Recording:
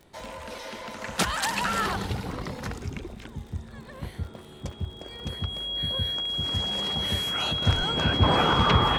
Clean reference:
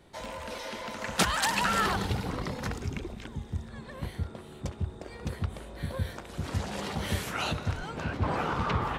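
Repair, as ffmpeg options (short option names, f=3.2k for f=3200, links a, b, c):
-af "adeclick=t=4,bandreject=f=3.3k:w=30,asetnsamples=n=441:p=0,asendcmd='7.62 volume volume -8dB',volume=0dB"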